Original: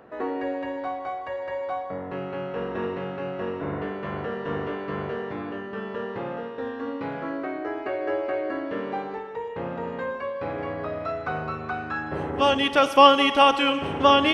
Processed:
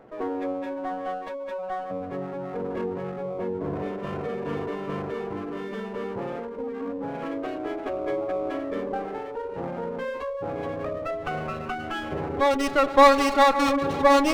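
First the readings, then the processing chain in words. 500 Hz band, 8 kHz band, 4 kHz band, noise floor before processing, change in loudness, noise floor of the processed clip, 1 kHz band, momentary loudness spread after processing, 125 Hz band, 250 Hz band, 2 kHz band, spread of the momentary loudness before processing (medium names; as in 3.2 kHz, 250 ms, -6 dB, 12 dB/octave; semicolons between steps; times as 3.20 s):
+0.5 dB, no reading, -8.5 dB, -35 dBFS, -1.0 dB, -35 dBFS, -1.0 dB, 14 LU, -0.5 dB, +0.5 dB, -2.0 dB, 14 LU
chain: echo that smears into a reverb 644 ms, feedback 56%, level -11 dB; spectral gate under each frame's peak -15 dB strong; sliding maximum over 9 samples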